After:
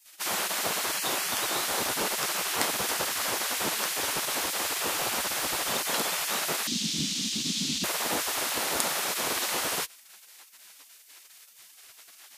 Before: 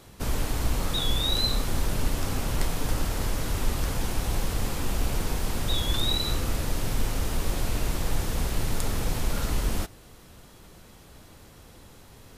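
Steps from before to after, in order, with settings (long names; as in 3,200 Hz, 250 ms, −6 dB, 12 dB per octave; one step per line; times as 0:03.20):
gate on every frequency bin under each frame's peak −25 dB weak
0:06.67–0:07.84: drawn EQ curve 110 Hz 0 dB, 170 Hz +13 dB, 250 Hz +12 dB, 480 Hz −21 dB, 700 Hz −27 dB, 1,500 Hz −19 dB, 3,500 Hz +5 dB, 6,600 Hz +3 dB, 12,000 Hz −14 dB
level +8 dB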